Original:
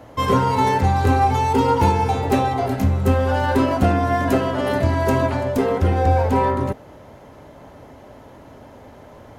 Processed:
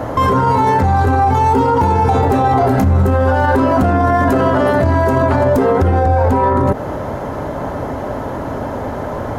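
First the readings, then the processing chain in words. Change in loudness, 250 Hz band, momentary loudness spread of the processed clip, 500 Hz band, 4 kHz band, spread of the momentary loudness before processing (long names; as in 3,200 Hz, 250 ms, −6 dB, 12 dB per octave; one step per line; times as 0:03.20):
+4.5 dB, +5.0 dB, 10 LU, +6.5 dB, −1.0 dB, 4 LU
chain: high shelf with overshoot 1,900 Hz −6 dB, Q 1.5
downward compressor, threshold −22 dBFS, peak gain reduction 10.5 dB
boost into a limiter +24.5 dB
level −4.5 dB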